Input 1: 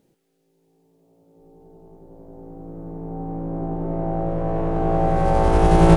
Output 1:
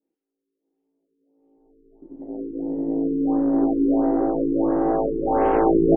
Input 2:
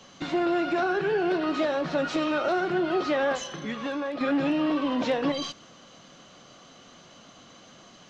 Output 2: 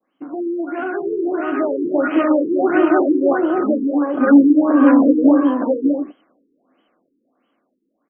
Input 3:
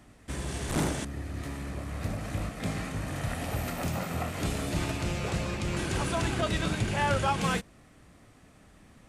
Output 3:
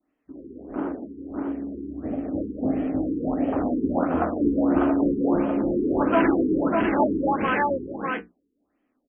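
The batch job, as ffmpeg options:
ffmpeg -i in.wav -af "bandreject=frequency=60:width_type=h:width=6,bandreject=frequency=120:width_type=h:width=6,bandreject=frequency=180:width_type=h:width=6,bandreject=frequency=240:width_type=h:width=6,bandreject=frequency=300:width_type=h:width=6,bandreject=frequency=360:width_type=h:width=6,bandreject=frequency=420:width_type=h:width=6,bandreject=frequency=480:width_type=h:width=6,afwtdn=0.0224,adynamicequalizer=threshold=0.00891:dfrequency=1600:dqfactor=1.1:tfrequency=1600:tqfactor=1.1:attack=5:release=100:ratio=0.375:range=2:mode=boostabove:tftype=bell,dynaudnorm=framelen=120:gausssize=31:maxgain=13dB,lowshelf=frequency=190:width_type=q:width=3:gain=-12.5,flanger=delay=6.3:depth=8.2:regen=-54:speed=0.32:shape=sinusoidal,aecho=1:1:599:0.668,afftfilt=real='re*lt(b*sr/1024,460*pow(3400/460,0.5+0.5*sin(2*PI*1.5*pts/sr)))':imag='im*lt(b*sr/1024,460*pow(3400/460,0.5+0.5*sin(2*PI*1.5*pts/sr)))':win_size=1024:overlap=0.75,volume=1dB" out.wav

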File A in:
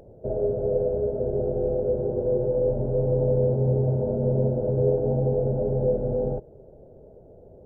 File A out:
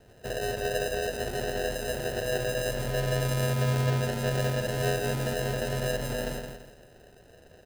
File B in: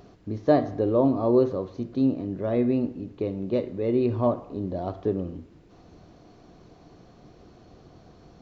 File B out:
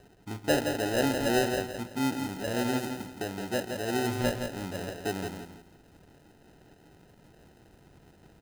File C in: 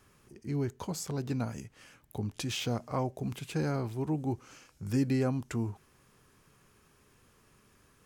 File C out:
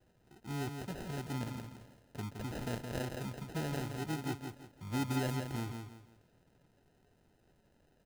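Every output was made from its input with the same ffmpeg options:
ffmpeg -i in.wav -af "acrusher=samples=39:mix=1:aa=0.000001,aecho=1:1:168|336|504|672:0.501|0.155|0.0482|0.0149,volume=-6.5dB" out.wav

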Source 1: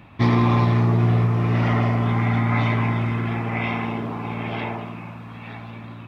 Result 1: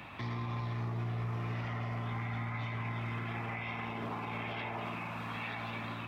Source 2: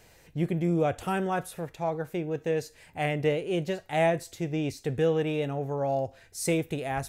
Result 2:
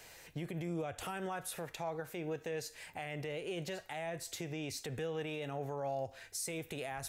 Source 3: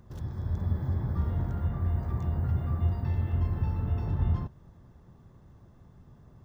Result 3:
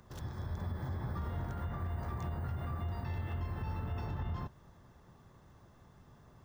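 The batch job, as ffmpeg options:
ffmpeg -i in.wav -filter_complex "[0:a]lowshelf=frequency=490:gain=-11.5,acrossover=split=120[link_01][link_02];[link_02]acompressor=threshold=-37dB:ratio=6[link_03];[link_01][link_03]amix=inputs=2:normalize=0,alimiter=level_in=10.5dB:limit=-24dB:level=0:latency=1:release=71,volume=-10.5dB,volume=4.5dB" out.wav

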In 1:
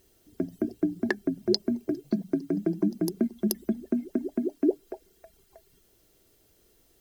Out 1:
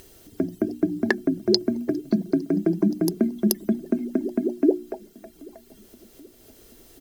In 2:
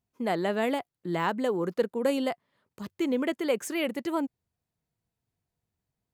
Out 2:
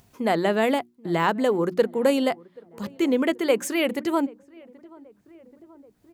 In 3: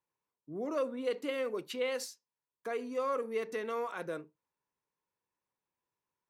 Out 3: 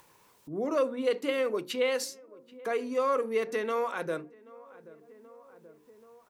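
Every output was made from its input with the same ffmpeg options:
ffmpeg -i in.wav -filter_complex "[0:a]bandreject=frequency=60:width_type=h:width=6,bandreject=frequency=120:width_type=h:width=6,bandreject=frequency=180:width_type=h:width=6,bandreject=frequency=240:width_type=h:width=6,bandreject=frequency=300:width_type=h:width=6,bandreject=frequency=360:width_type=h:width=6,asplit=2[link_01][link_02];[link_02]adelay=781,lowpass=frequency=1300:poles=1,volume=-24dB,asplit=2[link_03][link_04];[link_04]adelay=781,lowpass=frequency=1300:poles=1,volume=0.48,asplit=2[link_05][link_06];[link_06]adelay=781,lowpass=frequency=1300:poles=1,volume=0.48[link_07];[link_01][link_03][link_05][link_07]amix=inputs=4:normalize=0,acompressor=mode=upward:threshold=-48dB:ratio=2.5,volume=6dB" out.wav

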